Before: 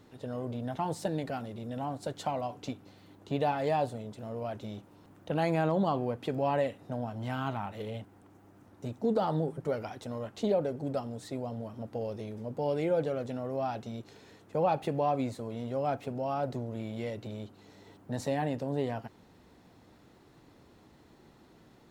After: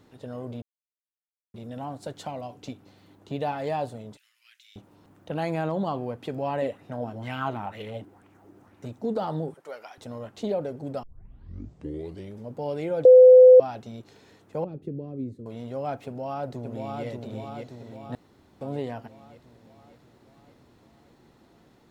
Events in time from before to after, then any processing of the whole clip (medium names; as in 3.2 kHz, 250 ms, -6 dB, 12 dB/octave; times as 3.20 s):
0.62–1.54 s: mute
2.18–3.42 s: dynamic bell 1.1 kHz, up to -5 dB, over -47 dBFS, Q 0.97
4.17–4.76 s: steep high-pass 1.9 kHz
6.62–8.86 s: sweeping bell 2.1 Hz 310–2700 Hz +11 dB
9.54–9.98 s: Bessel high-pass 870 Hz
11.03 s: tape start 1.35 s
13.05–13.60 s: bleep 508 Hz -7.5 dBFS
14.64–15.46 s: FFT filter 400 Hz 0 dB, 810 Hz -29 dB, 1.2 kHz -22 dB
16.05–17.05 s: echo throw 580 ms, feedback 60%, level -3 dB
18.15–18.61 s: room tone